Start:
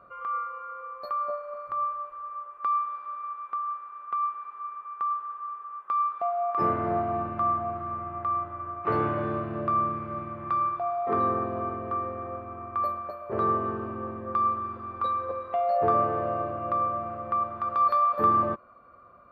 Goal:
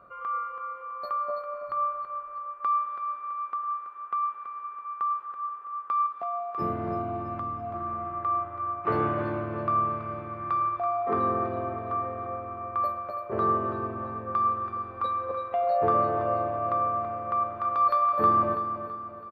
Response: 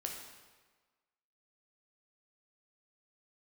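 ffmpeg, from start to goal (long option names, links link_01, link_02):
-filter_complex "[0:a]asettb=1/sr,asplit=3[link_01][link_02][link_03];[link_01]atrim=end=6.064[link_04];[link_02]atrim=start=6.06:end=7.74,asetpts=PTS-STARTPTS,afade=type=in:duration=0.004:curve=qsin,afade=type=out:start_time=1.676:duration=0.004:curve=qsin,acrossover=split=420|3000[link_05][link_06][link_07];[link_06]acompressor=threshold=-37dB:ratio=3[link_08];[link_05][link_08][link_07]amix=inputs=3:normalize=0[link_09];[link_03]atrim=start=7.736[link_10];[link_04][link_09]acrossfade=duration=0.004:curve1=hsin:curve2=qsin[link_11];[link_11][link_10]acrossfade=duration=0.004:curve1=qsin:curve2=hsin,asplit=2[link_12][link_13];[link_13]aecho=0:1:330|660|990|1320|1650:0.335|0.151|0.0678|0.0305|0.0137[link_14];[link_12][link_14]amix=inputs=2:normalize=0"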